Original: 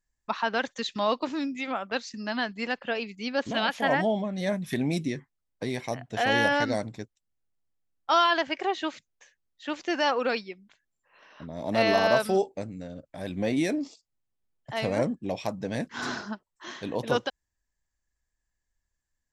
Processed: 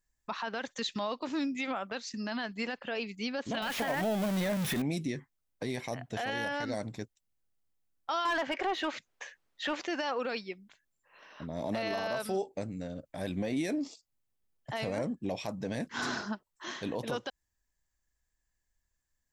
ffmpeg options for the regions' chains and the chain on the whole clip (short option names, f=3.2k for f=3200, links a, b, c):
-filter_complex "[0:a]asettb=1/sr,asplit=3[a][b][c];[a]atrim=end=3.624[d];[b]atrim=start=3.62:end=4.82,asetpts=PTS-STARTPTS,afade=t=in:d=0.004:c=qsin,afade=t=out:st=1.196:d=0.004:c=qsin,aeval=exprs='val(0)+0.5*0.0473*sgn(val(0))':c=same,acrossover=split=3600[e][f];[f]acompressor=threshold=-45dB:ratio=4:attack=1:release=60[g];[e][g]amix=inputs=2:normalize=0,highshelf=f=4.1k:g=8.5[h];[c]atrim=start=4.816[i];[d][h]acrossfade=d=0.004:c1=hsin:c2=qsin[j];[j][i]acrossfade=d=0.004:c1=qsin:c2=hsin,asettb=1/sr,asplit=3[k][l][m];[k]atrim=end=8.254[n];[l]atrim=start=8.25:end=9.87,asetpts=PTS-STARTPTS,afade=t=in:d=0.004:c=qsin,afade=t=out:st=1.616:d=0.004:c=qsin,acontrast=85,aeval=exprs='0.282*(abs(mod(val(0)/0.282+3,4)-2)-1)':c=same,asplit=2[o][p];[p]highpass=f=720:p=1,volume=15dB,asoftclip=type=tanh:threshold=-10.5dB[q];[o][q]amix=inputs=2:normalize=0,lowpass=f=1.5k:p=1,volume=-6dB[r];[m]atrim=start=9.866[s];[n][r]acrossfade=d=0.004:c1=hsin:c2=qsin[t];[t][s]acrossfade=d=0.004:c1=qsin:c2=hsin,highshelf=f=10k:g=5.5,acompressor=threshold=-29dB:ratio=3,alimiter=limit=-24dB:level=0:latency=1:release=11"